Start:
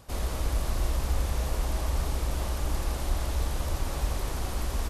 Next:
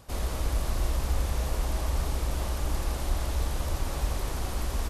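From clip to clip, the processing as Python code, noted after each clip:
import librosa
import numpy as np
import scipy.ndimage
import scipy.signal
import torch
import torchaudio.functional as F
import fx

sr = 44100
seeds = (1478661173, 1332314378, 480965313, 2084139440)

y = x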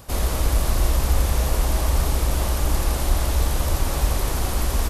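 y = fx.high_shelf(x, sr, hz=12000.0, db=9.5)
y = F.gain(torch.from_numpy(y), 8.0).numpy()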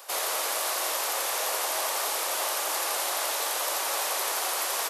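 y = scipy.signal.sosfilt(scipy.signal.bessel(6, 730.0, 'highpass', norm='mag', fs=sr, output='sos'), x)
y = F.gain(torch.from_numpy(y), 2.5).numpy()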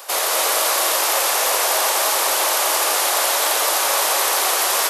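y = x + 10.0 ** (-4.0 / 20.0) * np.pad(x, (int(222 * sr / 1000.0), 0))[:len(x)]
y = F.gain(torch.from_numpy(y), 9.0).numpy()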